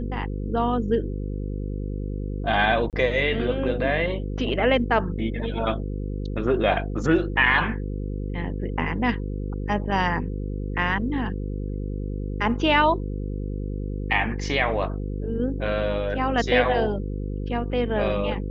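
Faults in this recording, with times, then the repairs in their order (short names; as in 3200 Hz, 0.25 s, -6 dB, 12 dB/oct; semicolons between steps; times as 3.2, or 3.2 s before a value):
buzz 50 Hz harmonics 10 -29 dBFS
2.9–2.93 gap 28 ms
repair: de-hum 50 Hz, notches 10; interpolate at 2.9, 28 ms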